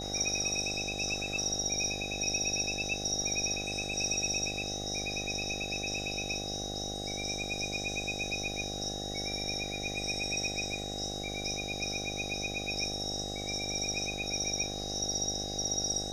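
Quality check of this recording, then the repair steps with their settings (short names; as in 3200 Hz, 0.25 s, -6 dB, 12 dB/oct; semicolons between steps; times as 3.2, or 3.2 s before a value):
buzz 50 Hz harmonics 16 -40 dBFS
tone 3800 Hz -40 dBFS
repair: de-hum 50 Hz, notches 16; notch 3800 Hz, Q 30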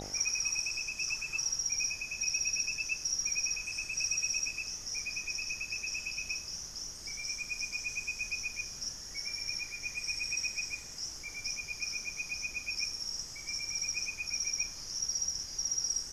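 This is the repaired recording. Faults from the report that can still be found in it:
none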